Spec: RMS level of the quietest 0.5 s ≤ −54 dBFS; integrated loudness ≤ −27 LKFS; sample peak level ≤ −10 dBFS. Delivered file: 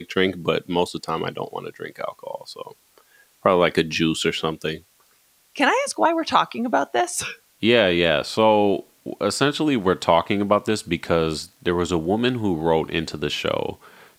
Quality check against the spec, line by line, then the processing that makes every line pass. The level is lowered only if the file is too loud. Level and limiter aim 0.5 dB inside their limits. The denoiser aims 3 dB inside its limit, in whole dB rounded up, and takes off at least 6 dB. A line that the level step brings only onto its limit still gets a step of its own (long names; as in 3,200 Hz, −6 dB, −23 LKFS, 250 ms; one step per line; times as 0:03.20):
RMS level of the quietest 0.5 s −60 dBFS: in spec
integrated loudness −21.5 LKFS: out of spec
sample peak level −2.0 dBFS: out of spec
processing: level −6 dB
brickwall limiter −10.5 dBFS